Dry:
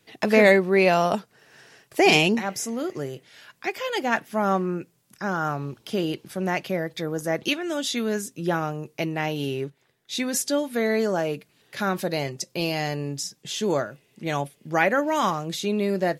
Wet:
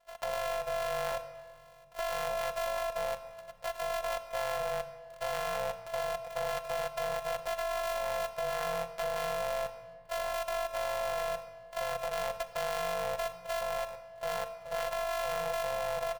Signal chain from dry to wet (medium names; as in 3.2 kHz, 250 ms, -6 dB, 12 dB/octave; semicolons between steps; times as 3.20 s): sorted samples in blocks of 128 samples; comb 5.1 ms, depth 48%; ring modulator 320 Hz; compression 6:1, threshold -27 dBFS, peak gain reduction 13.5 dB; resonant low shelf 460 Hz -9.5 dB, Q 3; level held to a coarse grid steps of 12 dB; simulated room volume 3400 m³, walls mixed, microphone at 0.78 m; trim +1 dB